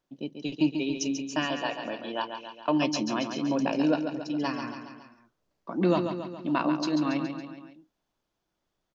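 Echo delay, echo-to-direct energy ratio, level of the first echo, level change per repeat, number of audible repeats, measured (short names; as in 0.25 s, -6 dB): 0.139 s, -6.0 dB, -7.5 dB, -5.0 dB, 4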